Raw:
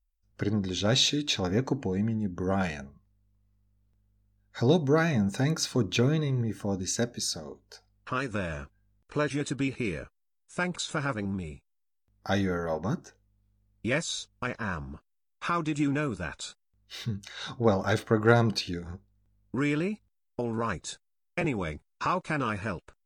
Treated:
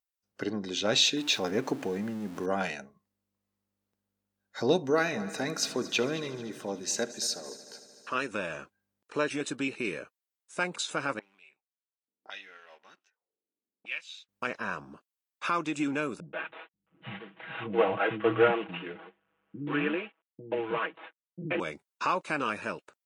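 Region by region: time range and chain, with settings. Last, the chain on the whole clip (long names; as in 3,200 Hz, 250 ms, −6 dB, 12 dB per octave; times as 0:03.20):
0:01.17–0:02.46: converter with a step at zero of −41 dBFS + upward compression, threshold −29 dBFS
0:04.90–0:08.15: low-shelf EQ 180 Hz −7.5 dB + echo machine with several playback heads 75 ms, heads first and third, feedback 69%, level −18.5 dB
0:11.19–0:14.29: mu-law and A-law mismatch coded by A + envelope filter 260–2,700 Hz, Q 3.6, up, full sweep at −33 dBFS
0:16.20–0:21.60: variable-slope delta modulation 16 kbit/s + comb filter 6.2 ms, depth 86% + multiband delay without the direct sound lows, highs 130 ms, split 260 Hz
whole clip: high-pass filter 280 Hz 12 dB per octave; dynamic equaliser 2,700 Hz, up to +5 dB, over −53 dBFS, Q 5.5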